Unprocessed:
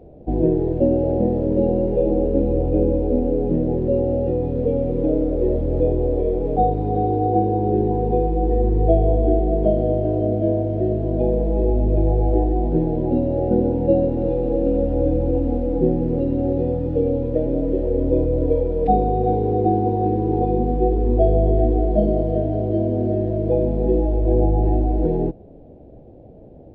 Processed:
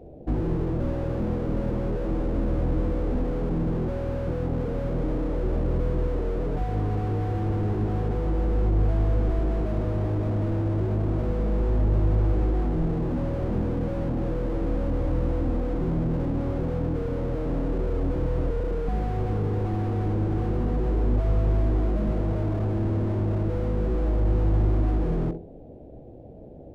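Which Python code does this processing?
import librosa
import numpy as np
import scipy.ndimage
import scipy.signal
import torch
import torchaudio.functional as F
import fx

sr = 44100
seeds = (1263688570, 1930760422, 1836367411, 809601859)

y = fx.room_flutter(x, sr, wall_m=11.4, rt60_s=0.37)
y = fx.slew_limit(y, sr, full_power_hz=16.0)
y = F.gain(torch.from_numpy(y), -1.0).numpy()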